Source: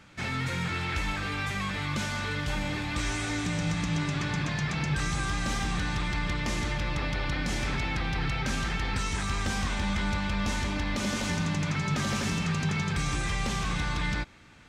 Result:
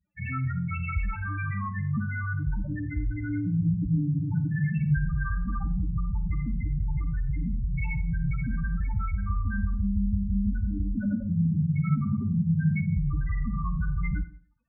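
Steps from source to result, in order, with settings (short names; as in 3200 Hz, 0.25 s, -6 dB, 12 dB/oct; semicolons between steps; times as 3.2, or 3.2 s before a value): crossover distortion -48.5 dBFS; loudest bins only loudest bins 4; Schroeder reverb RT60 0.47 s, combs from 32 ms, DRR 9 dB; gain +6.5 dB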